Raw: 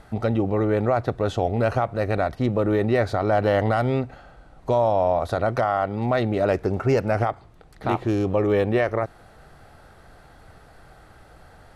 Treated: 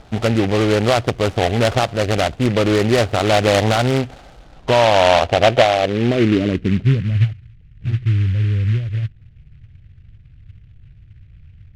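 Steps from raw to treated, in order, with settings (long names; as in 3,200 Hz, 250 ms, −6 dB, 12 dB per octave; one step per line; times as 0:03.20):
running median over 25 samples
low-pass filter sweep 2,300 Hz → 110 Hz, 0:04.38–0:07.34
short delay modulated by noise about 2,100 Hz, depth 0.087 ms
level +5.5 dB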